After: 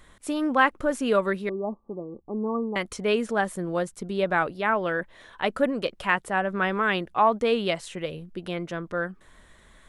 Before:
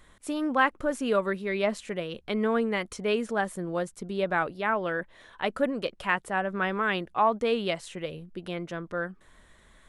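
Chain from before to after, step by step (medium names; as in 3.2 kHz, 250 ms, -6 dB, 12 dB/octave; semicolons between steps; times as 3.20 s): 1.49–2.76 s: rippled Chebyshev low-pass 1.2 kHz, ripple 9 dB; trim +3 dB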